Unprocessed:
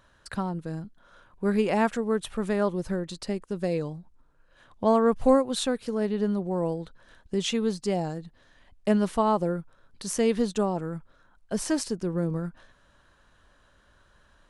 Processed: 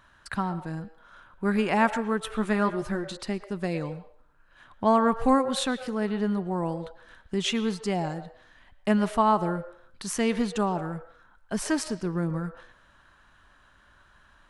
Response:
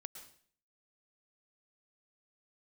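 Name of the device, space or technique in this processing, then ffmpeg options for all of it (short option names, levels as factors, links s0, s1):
filtered reverb send: -filter_complex "[0:a]asettb=1/sr,asplit=3[s0][s1][s2];[s0]atrim=end=2.314[s3];[s1]atrim=start=2.31:end=3.17,asetpts=PTS-STARTPTS,afade=t=in:d=0.004:c=qsin,afade=t=out:st=0.856:d=0.004:c=qsin,asplit=2[s4][s5];[s5]adelay=14,volume=0.447[s6];[s4][s6]amix=inputs=2:normalize=0,atrim=end_sample=37926[s7];[s2]atrim=start=3.166[s8];[s3][s7]acrossfade=d=0.004:c1=hsin:c2=qsin[s9];[s9][s8]acrossfade=d=0.004:c1=qsin:c2=hsin,asplit=2[s10][s11];[s11]highpass=f=510:w=0.5412,highpass=f=510:w=1.3066,lowpass=3100[s12];[1:a]atrim=start_sample=2205[s13];[s12][s13]afir=irnorm=-1:irlink=0,volume=1.5[s14];[s10][s14]amix=inputs=2:normalize=0"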